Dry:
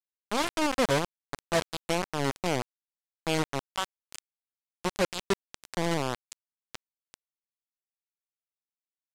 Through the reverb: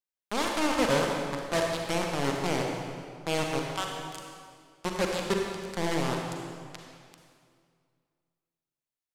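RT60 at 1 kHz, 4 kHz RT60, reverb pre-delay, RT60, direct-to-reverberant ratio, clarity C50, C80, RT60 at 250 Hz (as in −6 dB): 2.1 s, 1.7 s, 37 ms, 2.1 s, 0.0 dB, 1.0 dB, 2.5 dB, 2.3 s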